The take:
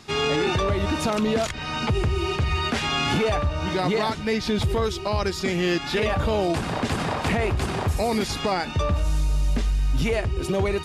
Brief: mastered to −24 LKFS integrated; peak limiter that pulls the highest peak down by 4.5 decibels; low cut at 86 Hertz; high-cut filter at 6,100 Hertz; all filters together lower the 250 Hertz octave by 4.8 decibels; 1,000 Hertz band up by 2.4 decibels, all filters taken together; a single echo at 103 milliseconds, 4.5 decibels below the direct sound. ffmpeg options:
ffmpeg -i in.wav -af "highpass=86,lowpass=6100,equalizer=frequency=250:width_type=o:gain=-7,equalizer=frequency=1000:width_type=o:gain=3.5,alimiter=limit=-16.5dB:level=0:latency=1,aecho=1:1:103:0.596,volume=1.5dB" out.wav

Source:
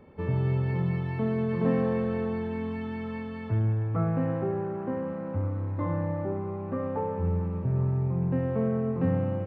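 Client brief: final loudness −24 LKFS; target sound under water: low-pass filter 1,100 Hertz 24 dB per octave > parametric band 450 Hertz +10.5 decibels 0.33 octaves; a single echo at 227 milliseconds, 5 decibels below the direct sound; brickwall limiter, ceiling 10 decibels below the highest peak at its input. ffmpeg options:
ffmpeg -i in.wav -af "alimiter=limit=-24dB:level=0:latency=1,lowpass=frequency=1100:width=0.5412,lowpass=frequency=1100:width=1.3066,equalizer=frequency=450:width_type=o:width=0.33:gain=10.5,aecho=1:1:227:0.562,volume=3.5dB" out.wav

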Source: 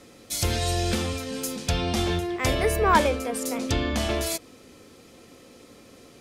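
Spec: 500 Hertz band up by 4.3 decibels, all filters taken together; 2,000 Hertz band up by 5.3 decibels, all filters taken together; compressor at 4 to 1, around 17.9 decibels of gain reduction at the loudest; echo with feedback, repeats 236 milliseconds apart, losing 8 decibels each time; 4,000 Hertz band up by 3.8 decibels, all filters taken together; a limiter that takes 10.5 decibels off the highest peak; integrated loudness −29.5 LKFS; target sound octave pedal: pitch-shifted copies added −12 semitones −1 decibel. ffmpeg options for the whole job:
ffmpeg -i in.wav -filter_complex "[0:a]equalizer=frequency=500:width_type=o:gain=5,equalizer=frequency=2000:width_type=o:gain=5.5,equalizer=frequency=4000:width_type=o:gain=3,acompressor=threshold=-34dB:ratio=4,alimiter=level_in=6dB:limit=-24dB:level=0:latency=1,volume=-6dB,aecho=1:1:236|472|708|944|1180:0.398|0.159|0.0637|0.0255|0.0102,asplit=2[link_01][link_02];[link_02]asetrate=22050,aresample=44100,atempo=2,volume=-1dB[link_03];[link_01][link_03]amix=inputs=2:normalize=0,volume=7.5dB" out.wav

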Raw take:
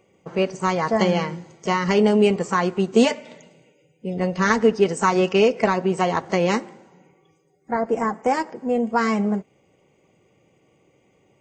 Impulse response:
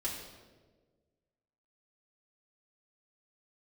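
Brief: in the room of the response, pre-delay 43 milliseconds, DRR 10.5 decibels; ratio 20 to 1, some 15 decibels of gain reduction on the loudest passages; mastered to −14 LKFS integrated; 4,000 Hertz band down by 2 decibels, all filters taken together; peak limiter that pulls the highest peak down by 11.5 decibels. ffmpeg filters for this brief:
-filter_complex "[0:a]equalizer=frequency=4000:width_type=o:gain=-3,acompressor=threshold=-26dB:ratio=20,alimiter=level_in=2.5dB:limit=-24dB:level=0:latency=1,volume=-2.5dB,asplit=2[link_01][link_02];[1:a]atrim=start_sample=2205,adelay=43[link_03];[link_02][link_03]afir=irnorm=-1:irlink=0,volume=-13dB[link_04];[link_01][link_04]amix=inputs=2:normalize=0,volume=22dB"

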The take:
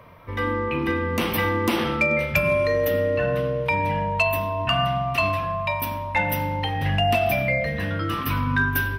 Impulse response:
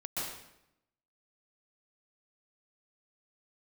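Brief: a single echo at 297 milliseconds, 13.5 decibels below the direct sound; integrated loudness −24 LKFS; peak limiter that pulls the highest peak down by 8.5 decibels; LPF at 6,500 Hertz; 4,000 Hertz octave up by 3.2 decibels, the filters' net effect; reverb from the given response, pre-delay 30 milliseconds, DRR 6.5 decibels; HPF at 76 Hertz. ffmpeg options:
-filter_complex "[0:a]highpass=76,lowpass=6500,equalizer=frequency=4000:width_type=o:gain=5.5,alimiter=limit=-16.5dB:level=0:latency=1,aecho=1:1:297:0.211,asplit=2[link_01][link_02];[1:a]atrim=start_sample=2205,adelay=30[link_03];[link_02][link_03]afir=irnorm=-1:irlink=0,volume=-10dB[link_04];[link_01][link_04]amix=inputs=2:normalize=0,volume=-0.5dB"

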